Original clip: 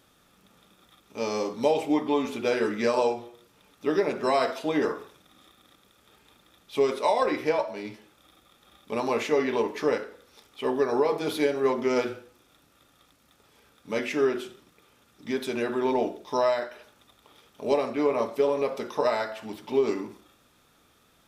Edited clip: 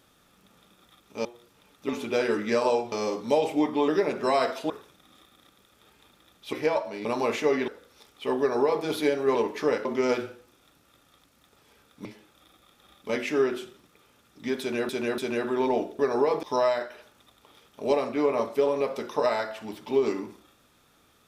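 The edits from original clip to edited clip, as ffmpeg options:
-filter_complex "[0:a]asplit=17[a][b][c][d][e][f][g][h][i][j][k][l][m][n][o][p][q];[a]atrim=end=1.252[r];[b]atrim=start=3.238:end=3.882[s];[c]atrim=start=2.208:end=3.242[t];[d]atrim=start=1.248:end=2.212[u];[e]atrim=start=3.878:end=4.702[v];[f]atrim=start=4.958:end=6.792[w];[g]atrim=start=7.358:end=7.882[x];[h]atrim=start=8.918:end=9.552[y];[i]atrim=start=10.048:end=11.722[z];[j]atrim=start=9.548:end=10.052[aa];[k]atrim=start=11.718:end=13.922[ab];[l]atrim=start=7.878:end=8.922[ac];[m]atrim=start=13.918:end=15.722[ad];[n]atrim=start=15.428:end=15.722[ae];[o]atrim=start=15.428:end=16.242[af];[p]atrim=start=10.768:end=11.212[ag];[q]atrim=start=16.238[ah];[r][s]acrossfade=d=0.004:c1=hsin:c2=hsin[ai];[ai][t]acrossfade=d=0.004:c1=hsin:c2=hsin[aj];[aj][u]acrossfade=d=0.004:c1=hsin:c2=hsin[ak];[ak][v]acrossfade=d=0.004:c1=hsin:c2=hsin[al];[al][w]acrossfade=d=0.004:c1=hsin:c2=hsin[am];[am][x]acrossfade=d=0.004:c1=hsin:c2=hsin[an];[an][y]acrossfade=d=0.004:c1=hsin:c2=hsin[ao];[ao][z]acrossfade=d=0.004:c1=hsin:c2=hsin[ap];[ap][aa]acrossfade=d=0.004:c1=hsin:c2=hsin[aq];[aq][ab]acrossfade=d=0.004:c1=hsin:c2=hsin[ar];[ar][ac]acrossfade=d=0.004:c1=hsin:c2=hsin[as];[as][ad]acrossfade=d=0.004:c1=hsin:c2=hsin[at];[at][ae]acrossfade=d=0.004:c1=hsin:c2=hsin[au];[au][af]acrossfade=d=0.004:c1=hsin:c2=hsin[av];[av][ag]acrossfade=d=0.004:c1=hsin:c2=hsin[aw];[aw][ah]acrossfade=d=0.004:c1=hsin:c2=hsin"

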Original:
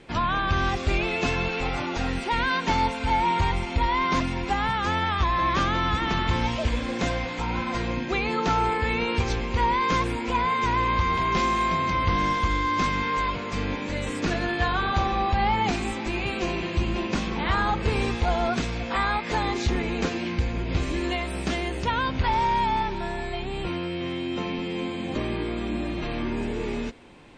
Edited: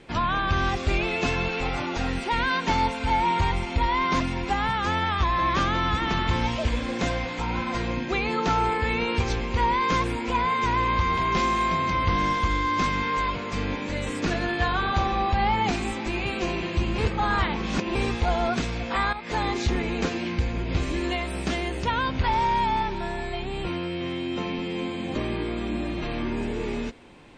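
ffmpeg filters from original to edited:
-filter_complex "[0:a]asplit=4[a][b][c][d];[a]atrim=end=16.982[e];[b]atrim=start=16.978:end=17.952,asetpts=PTS-STARTPTS,areverse[f];[c]atrim=start=17.948:end=19.13,asetpts=PTS-STARTPTS,afade=t=out:st=1.178:d=0.004:c=hsin:silence=0.237137[g];[d]atrim=start=19.13,asetpts=PTS-STARTPTS,afade=t=in:d=0.28:silence=0.237137[h];[e][f]acrossfade=d=0.004:c1=hsin:c2=hsin[i];[g][h]concat=n=2:v=0:a=1[j];[i][j]acrossfade=d=0.004:c1=hsin:c2=hsin"

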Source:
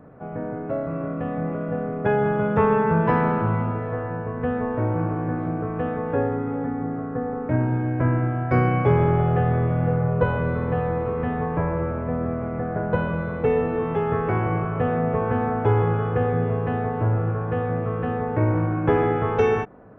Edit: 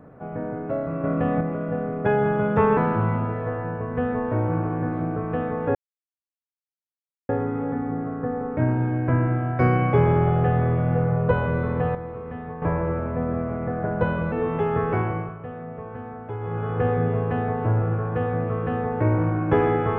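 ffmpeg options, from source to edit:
-filter_complex "[0:a]asplit=10[a][b][c][d][e][f][g][h][i][j];[a]atrim=end=1.042[k];[b]atrim=start=1.038:end=1.412,asetpts=PTS-STARTPTS,volume=5dB[l];[c]atrim=start=1.408:end=2.772[m];[d]atrim=start=3.228:end=6.21,asetpts=PTS-STARTPTS,afade=t=out:st=2.978:d=0.004:c=hsin,apad=pad_dur=1.54[n];[e]atrim=start=6.21:end=10.872,asetpts=PTS-STARTPTS,afade=t=in:d=0.004:c=hsin[o];[f]atrim=start=10.868:end=11.542,asetpts=PTS-STARTPTS,volume=-9dB[p];[g]atrim=start=11.538:end=13.242[q];[h]atrim=start=13.678:end=14.75,asetpts=PTS-STARTPTS,afade=t=out:st=0.622:d=0.45:silence=0.223872[r];[i]atrim=start=14.75:end=15.76,asetpts=PTS-STARTPTS,volume=-13dB[s];[j]atrim=start=15.76,asetpts=PTS-STARTPTS,afade=t=in:d=0.45:silence=0.223872[t];[k][l]acrossfade=d=0.004:c1=hsin:c2=hsin[u];[u][m]acrossfade=d=0.004:c1=hsin:c2=hsin[v];[n][o]concat=n=2:v=0:a=1[w];[v][w]acrossfade=d=0.004:c1=hsin:c2=hsin[x];[x][p]acrossfade=d=0.004:c1=hsin:c2=hsin[y];[y][q]acrossfade=d=0.004:c1=hsin:c2=hsin[z];[r][s][t]concat=n=3:v=0:a=1[aa];[z][aa]acrossfade=d=0.004:c1=hsin:c2=hsin"

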